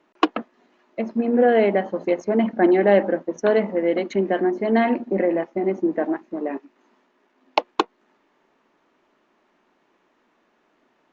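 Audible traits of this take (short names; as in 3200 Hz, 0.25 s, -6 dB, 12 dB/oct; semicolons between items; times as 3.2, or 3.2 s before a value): noise floor -66 dBFS; spectral tilt -2.5 dB/oct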